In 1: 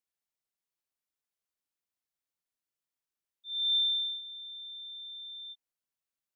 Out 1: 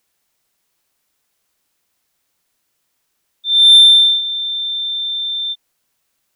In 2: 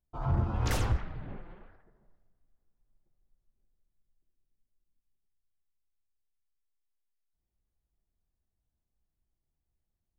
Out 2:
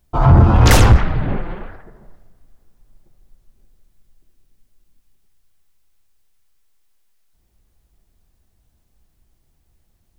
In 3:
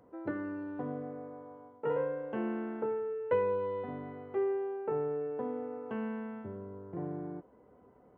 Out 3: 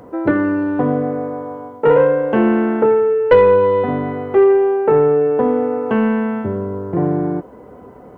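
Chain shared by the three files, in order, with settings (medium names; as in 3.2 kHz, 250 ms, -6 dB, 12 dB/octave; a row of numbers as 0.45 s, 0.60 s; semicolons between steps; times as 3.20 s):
saturation -24 dBFS; peak normalisation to -3 dBFS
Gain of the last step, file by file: +23.0 dB, +22.0 dB, +21.5 dB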